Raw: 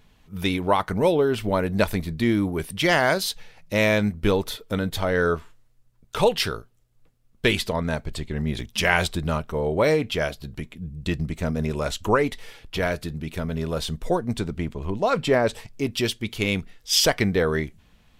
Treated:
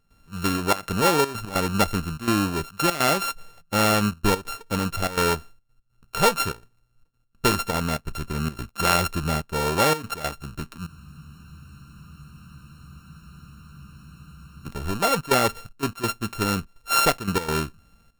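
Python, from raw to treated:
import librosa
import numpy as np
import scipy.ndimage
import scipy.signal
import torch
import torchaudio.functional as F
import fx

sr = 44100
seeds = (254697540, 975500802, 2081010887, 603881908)

y = np.r_[np.sort(x[:len(x) // 32 * 32].reshape(-1, 32), axis=1).ravel(), x[len(x) // 32 * 32:]]
y = fx.step_gate(y, sr, bpm=145, pattern='.xxxxxx.xxxx.x', floor_db=-12.0, edge_ms=4.5)
y = fx.spec_freeze(y, sr, seeds[0], at_s=10.88, hold_s=3.78)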